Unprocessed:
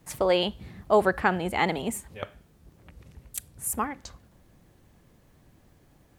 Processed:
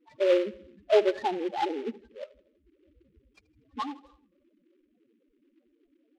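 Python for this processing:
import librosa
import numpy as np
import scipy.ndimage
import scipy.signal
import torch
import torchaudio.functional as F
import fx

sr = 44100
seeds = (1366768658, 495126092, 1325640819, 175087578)

p1 = scipy.signal.sosfilt(scipy.signal.butter(4, 3000.0, 'lowpass', fs=sr, output='sos'), x)
p2 = fx.low_shelf_res(p1, sr, hz=210.0, db=-12.0, q=1.5)
p3 = fx.spec_topn(p2, sr, count=4)
p4 = p3 + fx.echo_feedback(p3, sr, ms=80, feedback_pct=54, wet_db=-20, dry=0)
y = fx.noise_mod_delay(p4, sr, seeds[0], noise_hz=2100.0, depth_ms=0.045)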